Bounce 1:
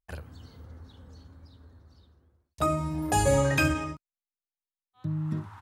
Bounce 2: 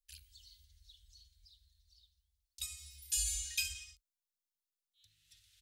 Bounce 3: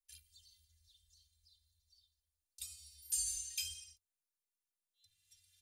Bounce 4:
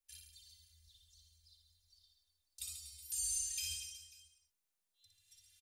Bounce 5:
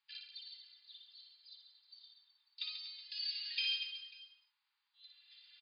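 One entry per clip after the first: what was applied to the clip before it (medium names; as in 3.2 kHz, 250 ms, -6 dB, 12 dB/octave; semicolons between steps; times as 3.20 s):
inverse Chebyshev band-stop 130–1100 Hz, stop band 60 dB; in parallel at -1 dB: gain riding within 3 dB 0.5 s; on the sum: trim -4.5 dB
peaking EQ 10 kHz +8 dB 1.4 oct; inharmonic resonator 86 Hz, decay 0.27 s, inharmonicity 0.03; trim +1 dB
peak limiter -32.5 dBFS, peak gain reduction 7.5 dB; on a send: reverse bouncing-ball echo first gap 60 ms, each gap 1.3×, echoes 5; on the sum: trim +1.5 dB
brick-wall FIR band-pass 790–5000 Hz; trim +11.5 dB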